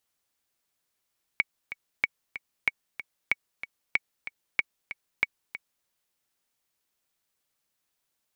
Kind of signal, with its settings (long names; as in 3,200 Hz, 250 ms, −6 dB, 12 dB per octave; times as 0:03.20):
click track 188 BPM, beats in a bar 2, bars 7, 2,240 Hz, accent 13 dB −9 dBFS